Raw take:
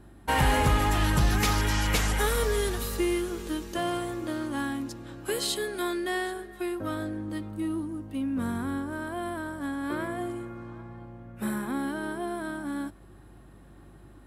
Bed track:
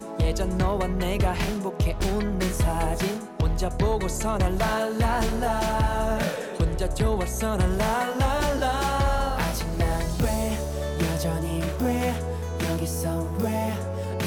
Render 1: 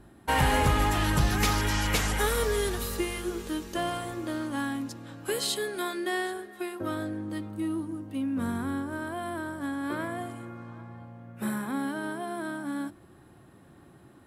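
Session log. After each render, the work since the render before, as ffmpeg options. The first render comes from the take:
-af "bandreject=f=50:t=h:w=4,bandreject=f=100:t=h:w=4,bandreject=f=150:t=h:w=4,bandreject=f=200:t=h:w=4,bandreject=f=250:t=h:w=4,bandreject=f=300:t=h:w=4,bandreject=f=350:t=h:w=4"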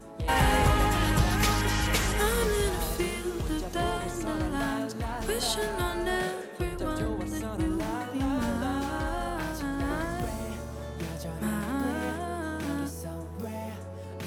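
-filter_complex "[1:a]volume=-10.5dB[a];[0:a][a]amix=inputs=2:normalize=0"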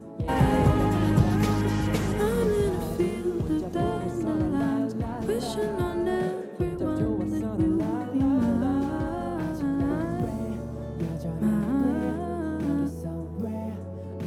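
-af "highpass=120,tiltshelf=f=700:g=9.5"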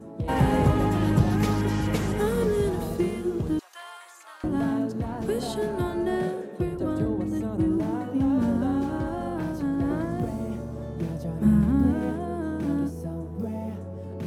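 -filter_complex "[0:a]asettb=1/sr,asplit=3[a][b][c];[a]atrim=end=3.594[d];[b]atrim=start=3.59:end=4.44,asetpts=PTS-STARTPTS,afade=t=in:d=0.004:c=qsin,afade=t=out:st=0.846:d=0.004:c=qsin,highpass=f=1.1k:w=0.5412,highpass=f=1.1k:w=1.3066[e];[c]atrim=start=4.436[f];[d][e]acrossfade=d=0.004:c1=hsin:c2=qsin[g];[g][f]acrossfade=d=0.004:c1=qsin:c2=hsin,asplit=3[h][i][j];[h]afade=t=out:st=11.44:d=0.02[k];[i]asubboost=boost=4:cutoff=190,afade=t=in:st=11.44:d=0.02,afade=t=out:st=11.92:d=0.02[l];[j]afade=t=in:st=11.92:d=0.02[m];[k][l][m]amix=inputs=3:normalize=0"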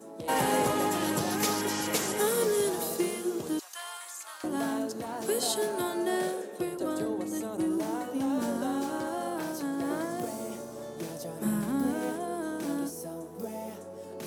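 -af "highpass=150,bass=f=250:g=-14,treble=f=4k:g=12"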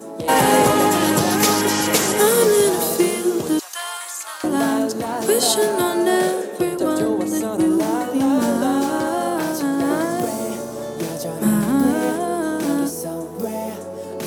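-af "volume=12dB,alimiter=limit=-3dB:level=0:latency=1"

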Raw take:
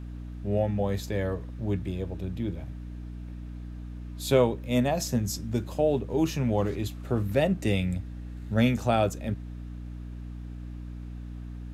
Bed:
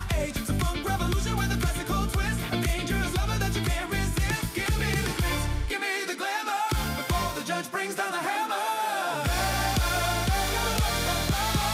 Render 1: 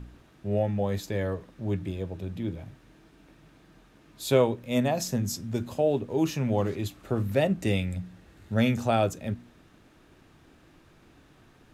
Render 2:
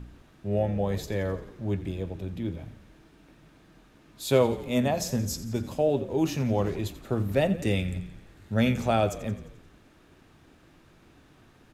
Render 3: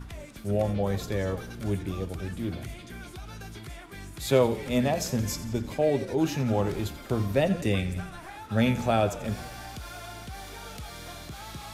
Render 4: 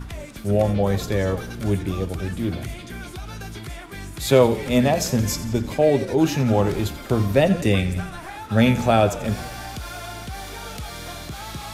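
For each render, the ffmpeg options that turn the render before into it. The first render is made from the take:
-af "bandreject=f=60:t=h:w=4,bandreject=f=120:t=h:w=4,bandreject=f=180:t=h:w=4,bandreject=f=240:t=h:w=4,bandreject=f=300:t=h:w=4"
-filter_complex "[0:a]asplit=7[a][b][c][d][e][f][g];[b]adelay=87,afreqshift=-32,volume=-15dB[h];[c]adelay=174,afreqshift=-64,volume=-19.4dB[i];[d]adelay=261,afreqshift=-96,volume=-23.9dB[j];[e]adelay=348,afreqshift=-128,volume=-28.3dB[k];[f]adelay=435,afreqshift=-160,volume=-32.7dB[l];[g]adelay=522,afreqshift=-192,volume=-37.2dB[m];[a][h][i][j][k][l][m]amix=inputs=7:normalize=0"
-filter_complex "[1:a]volume=-15dB[a];[0:a][a]amix=inputs=2:normalize=0"
-af "volume=7dB,alimiter=limit=-3dB:level=0:latency=1"

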